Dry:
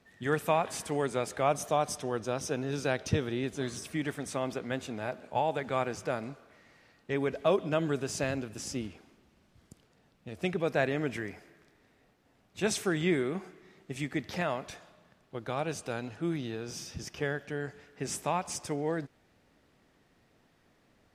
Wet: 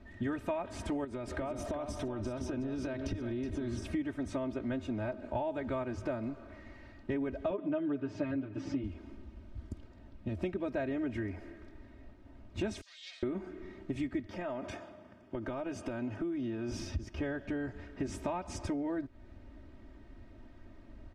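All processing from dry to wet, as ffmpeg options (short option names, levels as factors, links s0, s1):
-filter_complex "[0:a]asettb=1/sr,asplit=3[s0][s1][s2];[s0]atrim=end=1.044[s3];[s1]atrim=start=1.04:end=3.75,asetpts=PTS-STARTPTS,afade=t=in:d=0.004:c=qsin,afade=t=out:st=2.706:d=0.004:c=qsin,bandreject=f=6500:w=20,acompressor=threshold=0.0141:ratio=5:attack=3.2:release=140:knee=1:detection=peak,aecho=1:1:370:0.376,atrim=end_sample=119511[s4];[s2]atrim=start=3.746[s5];[s3][s4]acrossfade=d=0.004:c1=hsin:c2=qsin[s6];[s6][s5]acrossfade=d=0.004:c1=qsin:c2=hsin,asettb=1/sr,asplit=3[s7][s8][s9];[s7]atrim=end=7.504[s10];[s8]atrim=start=7.5:end=8.84,asetpts=PTS-STARTPTS,afade=t=in:d=0.004:c=qsin,afade=t=out:st=1.336:d=0.004:c=qsin,highpass=130,lowpass=3000,aecho=1:1:6.7:0.84,atrim=end_sample=59094[s11];[s9]atrim=start=8.836[s12];[s10][s11]acrossfade=d=0.004:c1=hsin:c2=qsin[s13];[s13][s12]acrossfade=d=0.004:c1=qsin:c2=hsin,asettb=1/sr,asplit=3[s14][s15][s16];[s14]atrim=end=12.814[s17];[s15]atrim=start=12.81:end=13.23,asetpts=PTS-STARTPTS,afade=t=in:d=0.004:c=qsin,afade=t=out:st=0.416:d=0.004:c=qsin,aeval=exprs='abs(val(0))':c=same,asuperpass=centerf=5200:order=4:qfactor=1.6[s18];[s16]atrim=start=13.226[s19];[s17][s18]acrossfade=d=0.004:c1=hsin:c2=qsin[s20];[s20][s19]acrossfade=d=0.004:c1=qsin:c2=hsin,asettb=1/sr,asplit=3[s21][s22][s23];[s21]atrim=end=14.264[s24];[s22]atrim=start=14.26:end=16.72,asetpts=PTS-STARTPTS,afade=t=in:d=0.004:c=qsin,afade=t=out:st=2.456:d=0.004:c=qsin,highpass=140,acompressor=threshold=0.01:ratio=2.5:attack=3.2:release=140:knee=1:detection=peak,bandreject=f=4000:w=5.3[s25];[s23]atrim=start=16.716[s26];[s24][s25]acrossfade=d=0.004:c1=hsin:c2=qsin[s27];[s27][s26]acrossfade=d=0.004:c1=qsin:c2=hsin,aemphasis=mode=reproduction:type=riaa,aecho=1:1:3.2:0.95,acompressor=threshold=0.0158:ratio=5,volume=1.33"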